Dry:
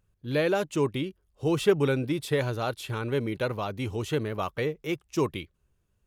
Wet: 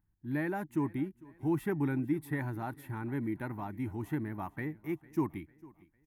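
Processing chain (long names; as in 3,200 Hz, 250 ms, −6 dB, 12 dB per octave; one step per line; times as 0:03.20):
drawn EQ curve 120 Hz 0 dB, 320 Hz +6 dB, 480 Hz −18 dB, 880 Hz +5 dB, 1,200 Hz −7 dB, 1,900 Hz +3 dB, 2,900 Hz −18 dB, 4,600 Hz −18 dB, 7,400 Hz −14 dB, 12,000 Hz +2 dB
on a send: repeating echo 451 ms, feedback 45%, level −22 dB
on the sum: level −6.5 dB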